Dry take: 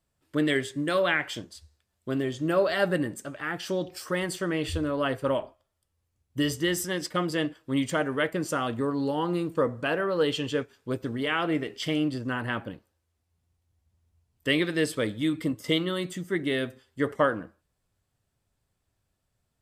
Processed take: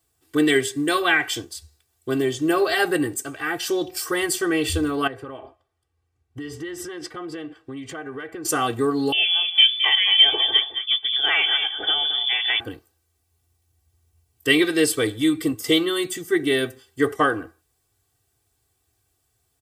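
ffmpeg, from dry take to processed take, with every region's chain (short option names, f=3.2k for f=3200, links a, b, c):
-filter_complex "[0:a]asettb=1/sr,asplit=3[a][b][c];[a]atrim=end=5.074[d];[b]atrim=start=5.07:end=8.45,asetpts=PTS-STARTPTS,afade=t=in:d=0.004:c=qsin,afade=t=out:st=3.376:d=0.004:c=qsin,lowpass=1.8k,aemphasis=mode=production:type=75fm,acompressor=threshold=-35dB:ratio=10:attack=3.2:release=140:knee=1:detection=peak[e];[c]atrim=start=8.446[f];[d][e]acrossfade=d=0.004:c1=hsin:c2=qsin[g];[g][f]acrossfade=d=0.004:c1=qsin:c2=hsin,asettb=1/sr,asplit=3[h][i][j];[h]atrim=end=9.124[k];[i]atrim=start=9.12:end=12.6,asetpts=PTS-STARTPTS,afade=t=in:d=0.004:c=qsin,afade=t=out:st=3.476:d=0.004:c=qsin,aecho=1:1:217:0.335,atrim=end_sample=153468,lowpass=f=3.1k:t=q:w=0.5098,lowpass=f=3.1k:t=q:w=0.6013,lowpass=f=3.1k:t=q:w=0.9,lowpass=f=3.1k:t=q:w=2.563,afreqshift=-3600[l];[j]atrim=start=12.596[m];[k][l]acrossfade=d=0.004:c1=hsin:c2=qsin[n];[n][m]acrossfade=d=0.004:c1=qsin:c2=hsin,highpass=63,highshelf=f=6.2k:g=11.5,aecho=1:1:2.6:0.96,volume=3dB"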